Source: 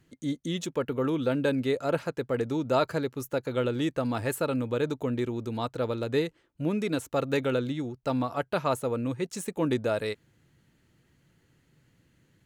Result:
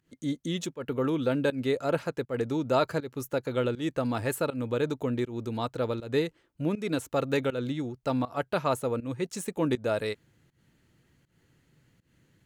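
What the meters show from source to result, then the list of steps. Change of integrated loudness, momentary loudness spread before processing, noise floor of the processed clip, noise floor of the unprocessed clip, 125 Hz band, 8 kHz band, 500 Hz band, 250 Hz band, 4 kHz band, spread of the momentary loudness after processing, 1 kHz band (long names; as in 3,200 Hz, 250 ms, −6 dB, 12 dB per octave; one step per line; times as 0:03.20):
−0.5 dB, 6 LU, −71 dBFS, −68 dBFS, −0.5 dB, 0.0 dB, −0.5 dB, −1.0 dB, −0.5 dB, 6 LU, −0.5 dB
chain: fake sidechain pumping 80 BPM, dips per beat 1, −19 dB, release 185 ms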